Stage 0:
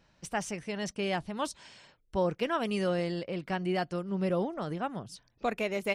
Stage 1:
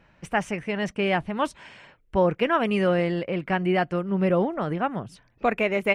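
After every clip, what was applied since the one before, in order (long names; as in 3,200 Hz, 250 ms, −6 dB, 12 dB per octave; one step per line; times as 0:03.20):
high shelf with overshoot 3,300 Hz −10 dB, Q 1.5
level +7.5 dB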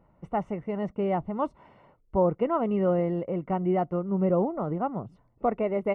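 Savitzky-Golay smoothing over 65 samples
level −2 dB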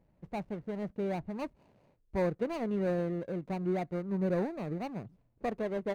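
running median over 41 samples
level −5.5 dB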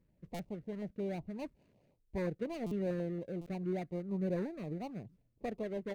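buffer that repeats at 0:00.34/0:02.66/0:03.41, samples 256, times 8
notch on a step sequencer 11 Hz 740–1,600 Hz
level −3.5 dB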